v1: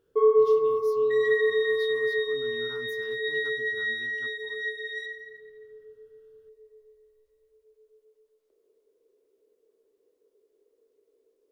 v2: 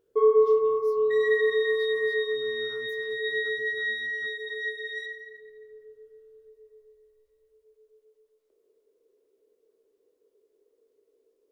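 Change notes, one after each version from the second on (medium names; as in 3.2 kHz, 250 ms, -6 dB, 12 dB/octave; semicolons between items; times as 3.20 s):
speech -7.5 dB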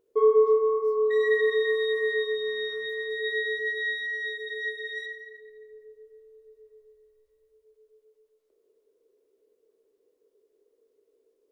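speech -10.5 dB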